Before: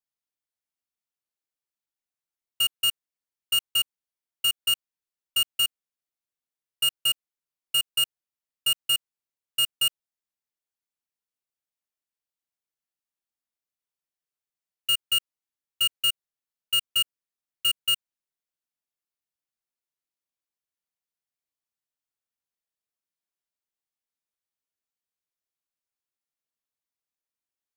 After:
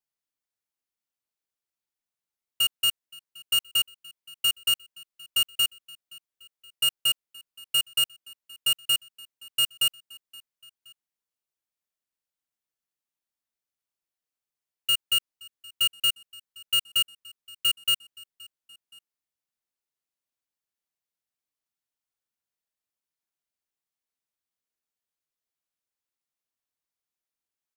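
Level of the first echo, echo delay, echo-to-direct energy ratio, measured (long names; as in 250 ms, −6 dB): −23.0 dB, 522 ms, −22.0 dB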